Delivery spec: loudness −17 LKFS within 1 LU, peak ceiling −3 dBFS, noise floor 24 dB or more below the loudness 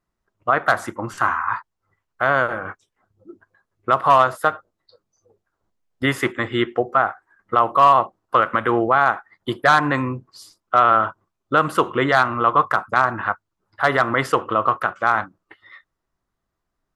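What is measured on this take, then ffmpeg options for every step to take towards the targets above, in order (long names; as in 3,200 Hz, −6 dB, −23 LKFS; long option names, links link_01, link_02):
integrated loudness −19.5 LKFS; sample peak −3.0 dBFS; target loudness −17.0 LKFS
→ -af "volume=2.5dB,alimiter=limit=-3dB:level=0:latency=1"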